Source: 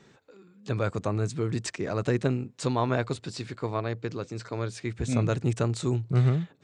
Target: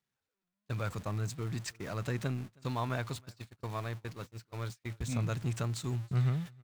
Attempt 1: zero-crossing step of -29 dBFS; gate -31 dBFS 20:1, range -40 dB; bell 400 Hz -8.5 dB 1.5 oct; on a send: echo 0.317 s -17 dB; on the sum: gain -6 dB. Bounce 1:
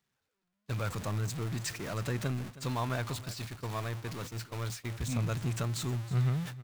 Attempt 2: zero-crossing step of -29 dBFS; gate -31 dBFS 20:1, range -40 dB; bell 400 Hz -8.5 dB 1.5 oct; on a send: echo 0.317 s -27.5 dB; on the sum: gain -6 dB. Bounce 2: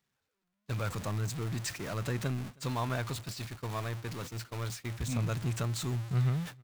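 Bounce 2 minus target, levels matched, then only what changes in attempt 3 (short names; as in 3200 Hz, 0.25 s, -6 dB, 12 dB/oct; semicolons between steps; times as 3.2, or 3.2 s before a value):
zero-crossing step: distortion +6 dB
change: zero-crossing step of -36 dBFS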